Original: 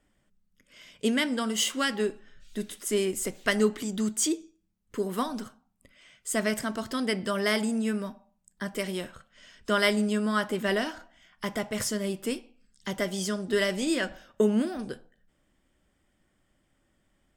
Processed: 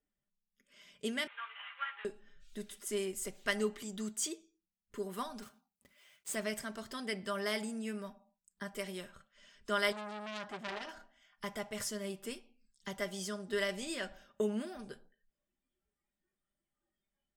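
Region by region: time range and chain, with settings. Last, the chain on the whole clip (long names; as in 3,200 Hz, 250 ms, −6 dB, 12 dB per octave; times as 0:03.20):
0:01.27–0:02.05: variable-slope delta modulation 16 kbit/s + high-pass filter 1,100 Hz 24 dB per octave + double-tracking delay 13 ms −4 dB
0:05.42–0:06.36: one scale factor per block 3 bits + high-pass filter 41 Hz
0:09.92–0:10.89: low-pass filter 5,900 Hz + saturating transformer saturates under 3,100 Hz
whole clip: noise reduction from a noise print of the clip's start 13 dB; dynamic equaliser 240 Hz, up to −6 dB, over −41 dBFS, Q 0.8; comb filter 5 ms, depth 44%; level −9 dB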